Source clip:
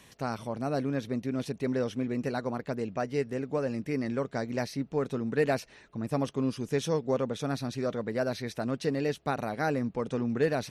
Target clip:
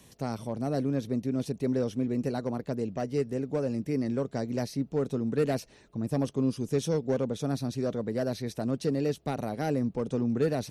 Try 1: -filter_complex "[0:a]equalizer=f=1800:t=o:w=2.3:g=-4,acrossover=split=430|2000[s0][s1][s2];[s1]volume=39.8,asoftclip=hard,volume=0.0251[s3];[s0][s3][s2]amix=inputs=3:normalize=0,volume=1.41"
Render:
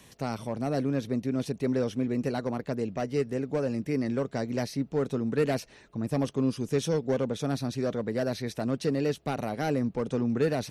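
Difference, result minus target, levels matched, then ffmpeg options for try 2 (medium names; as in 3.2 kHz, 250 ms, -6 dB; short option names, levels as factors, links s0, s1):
2 kHz band +4.0 dB
-filter_complex "[0:a]equalizer=f=1800:t=o:w=2.3:g=-10,acrossover=split=430|2000[s0][s1][s2];[s1]volume=39.8,asoftclip=hard,volume=0.0251[s3];[s0][s3][s2]amix=inputs=3:normalize=0,volume=1.41"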